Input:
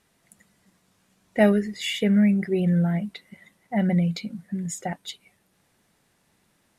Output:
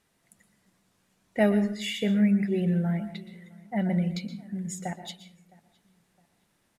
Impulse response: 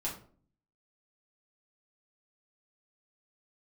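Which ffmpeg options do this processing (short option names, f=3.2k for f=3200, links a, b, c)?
-filter_complex "[0:a]asplit=2[a][b];[b]adelay=662,lowpass=f=2.6k:p=1,volume=-24dB,asplit=2[c][d];[d]adelay=662,lowpass=f=2.6k:p=1,volume=0.36[e];[a][c][e]amix=inputs=3:normalize=0,asplit=2[f][g];[1:a]atrim=start_sample=2205,adelay=118[h];[g][h]afir=irnorm=-1:irlink=0,volume=-13dB[i];[f][i]amix=inputs=2:normalize=0,volume=-4.5dB"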